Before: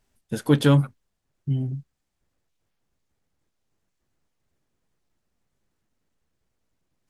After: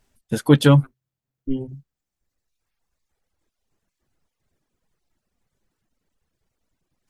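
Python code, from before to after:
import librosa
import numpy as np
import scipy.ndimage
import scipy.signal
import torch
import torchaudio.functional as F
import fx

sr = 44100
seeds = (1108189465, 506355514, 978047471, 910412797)

y = fx.dereverb_blind(x, sr, rt60_s=1.8)
y = fx.ring_mod(y, sr, carrier_hz=130.0, at=(0.83, 1.67), fade=0.02)
y = F.gain(torch.from_numpy(y), 5.0).numpy()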